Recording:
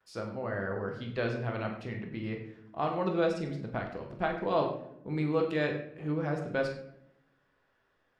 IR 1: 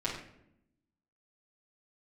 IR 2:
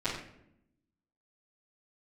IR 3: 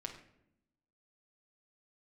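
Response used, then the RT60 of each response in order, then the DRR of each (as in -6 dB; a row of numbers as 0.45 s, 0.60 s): 2; 0.75 s, 0.75 s, 0.75 s; -9.0 dB, -19.0 dB, 0.0 dB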